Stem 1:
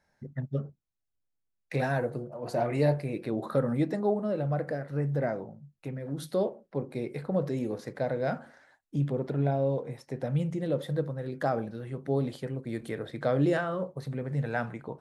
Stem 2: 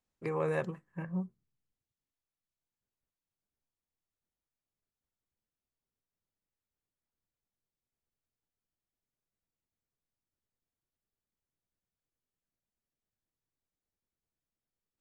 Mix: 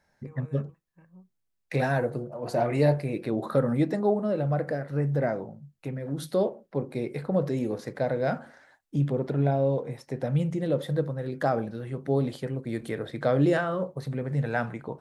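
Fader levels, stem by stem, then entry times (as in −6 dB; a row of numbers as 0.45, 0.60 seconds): +3.0, −17.5 decibels; 0.00, 0.00 seconds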